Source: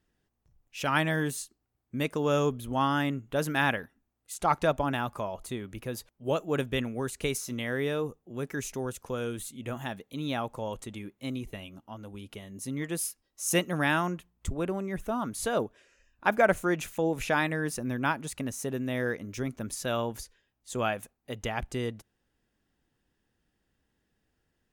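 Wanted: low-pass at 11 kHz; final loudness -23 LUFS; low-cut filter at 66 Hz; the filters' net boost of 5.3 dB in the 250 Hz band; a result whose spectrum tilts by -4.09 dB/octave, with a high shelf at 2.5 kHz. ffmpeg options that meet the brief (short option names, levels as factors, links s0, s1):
-af "highpass=66,lowpass=11000,equalizer=f=250:t=o:g=6.5,highshelf=f=2500:g=8,volume=1.78"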